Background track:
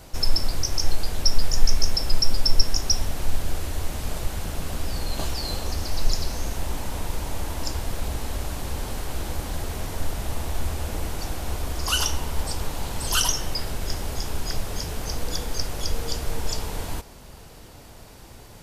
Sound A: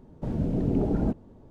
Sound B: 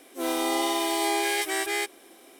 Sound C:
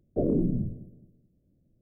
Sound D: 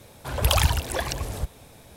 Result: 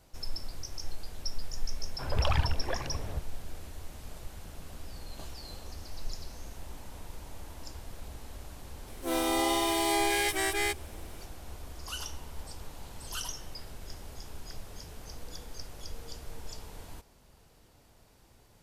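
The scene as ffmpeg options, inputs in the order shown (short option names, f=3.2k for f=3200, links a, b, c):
-filter_complex "[0:a]volume=-15.5dB[a];[4:a]lowpass=2.6k,atrim=end=1.96,asetpts=PTS-STARTPTS,volume=-6.5dB,afade=t=in:d=0.004:c=hsin,afade=t=out:st=1.956:d=0.004:c=hsin,adelay=1740[b];[2:a]atrim=end=2.39,asetpts=PTS-STARTPTS,volume=-2dB,afade=t=in:d=0.004:c=hsin,afade=t=out:st=2.386:d=0.004:c=hsin,adelay=8870[c];[a][b][c]amix=inputs=3:normalize=0"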